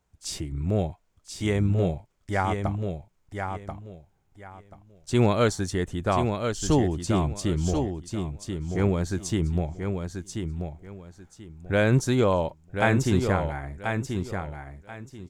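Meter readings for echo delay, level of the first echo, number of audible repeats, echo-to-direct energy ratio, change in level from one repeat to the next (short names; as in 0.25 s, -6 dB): 1.035 s, -6.0 dB, 3, -6.0 dB, -13.0 dB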